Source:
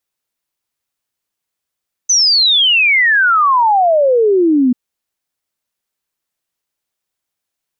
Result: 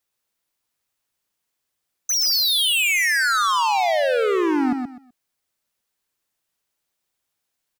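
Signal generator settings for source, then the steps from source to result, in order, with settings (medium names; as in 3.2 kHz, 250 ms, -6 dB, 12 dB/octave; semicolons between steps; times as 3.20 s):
log sweep 6.2 kHz -> 240 Hz 2.64 s -8 dBFS
hard clipper -20 dBFS; on a send: feedback delay 126 ms, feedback 23%, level -5.5 dB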